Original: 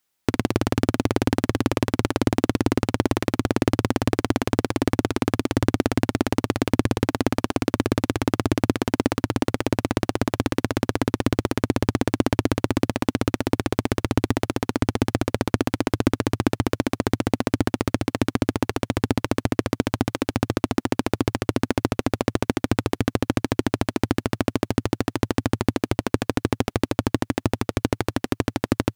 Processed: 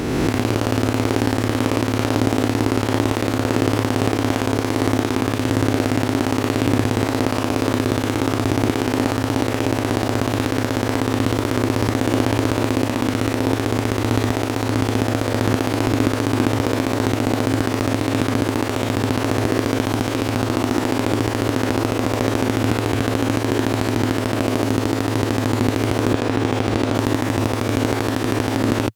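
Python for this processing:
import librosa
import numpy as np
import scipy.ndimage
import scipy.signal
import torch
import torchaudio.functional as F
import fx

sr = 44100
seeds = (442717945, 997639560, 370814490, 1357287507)

y = fx.spec_swells(x, sr, rise_s=2.19)
y = fx.resample_linear(y, sr, factor=3, at=(26.14, 26.95))
y = y * 10.0 ** (-1.5 / 20.0)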